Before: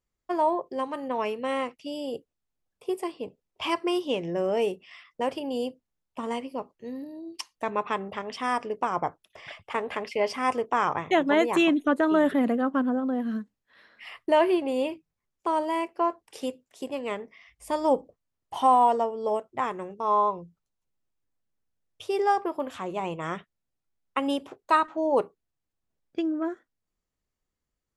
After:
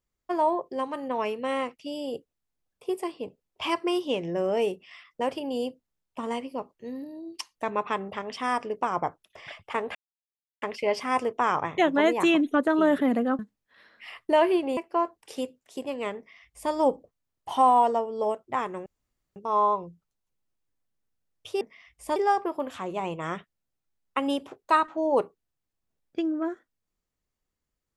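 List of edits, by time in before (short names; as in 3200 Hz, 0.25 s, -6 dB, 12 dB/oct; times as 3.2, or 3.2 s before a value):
9.95 insert silence 0.67 s
12.72–13.38 cut
14.76–15.82 cut
17.22–17.77 copy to 22.16
19.91 insert room tone 0.50 s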